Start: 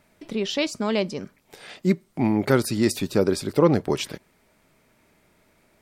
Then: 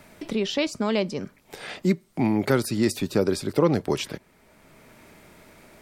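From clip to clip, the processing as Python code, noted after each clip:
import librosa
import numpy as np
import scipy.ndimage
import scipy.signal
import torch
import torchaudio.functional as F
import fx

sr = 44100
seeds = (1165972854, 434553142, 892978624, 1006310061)

y = fx.band_squash(x, sr, depth_pct=40)
y = y * 10.0 ** (-1.0 / 20.0)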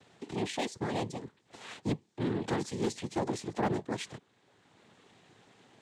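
y = fx.noise_vocoder(x, sr, seeds[0], bands=6)
y = np.clip(10.0 ** (15.0 / 20.0) * y, -1.0, 1.0) / 10.0 ** (15.0 / 20.0)
y = y * 10.0 ** (-9.0 / 20.0)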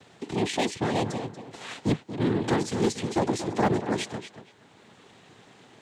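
y = fx.echo_tape(x, sr, ms=235, feedback_pct=25, wet_db=-7.5, lp_hz=4000.0, drive_db=28.0, wow_cents=11)
y = y * 10.0 ** (7.0 / 20.0)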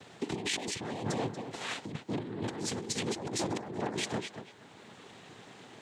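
y = fx.low_shelf(x, sr, hz=61.0, db=-6.5)
y = fx.over_compress(y, sr, threshold_db=-33.0, ratio=-1.0)
y = y * 10.0 ** (-3.0 / 20.0)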